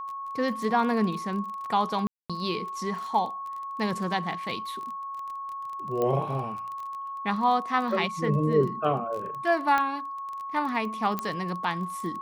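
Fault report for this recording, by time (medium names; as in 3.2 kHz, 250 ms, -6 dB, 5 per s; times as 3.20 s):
crackle 22 per s -34 dBFS
whine 1.1 kHz -33 dBFS
2.07–2.30 s: dropout 226 ms
6.02 s: pop -16 dBFS
9.78 s: pop -13 dBFS
11.19 s: pop -15 dBFS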